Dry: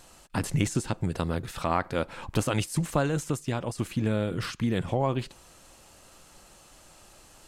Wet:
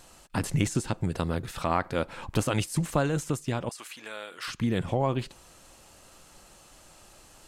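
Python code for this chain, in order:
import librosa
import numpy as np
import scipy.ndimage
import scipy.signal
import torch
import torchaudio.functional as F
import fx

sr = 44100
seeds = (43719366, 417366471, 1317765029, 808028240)

y = fx.highpass(x, sr, hz=1000.0, slope=12, at=(3.69, 4.48))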